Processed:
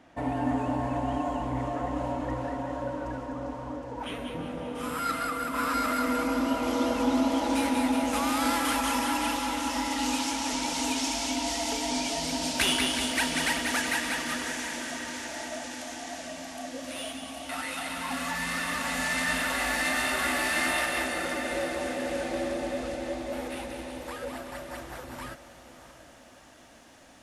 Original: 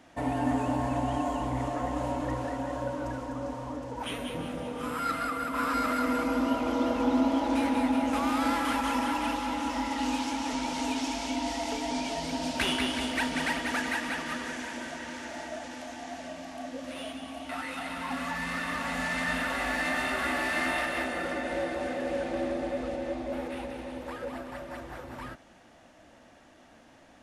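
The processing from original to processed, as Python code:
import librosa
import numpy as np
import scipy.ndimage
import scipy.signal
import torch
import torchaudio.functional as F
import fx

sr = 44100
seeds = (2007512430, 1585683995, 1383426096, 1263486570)

y = fx.high_shelf(x, sr, hz=4200.0, db=fx.steps((0.0, -7.5), (4.74, 6.5), (6.62, 12.0)))
y = fx.echo_diffused(y, sr, ms=642, feedback_pct=46, wet_db=-13)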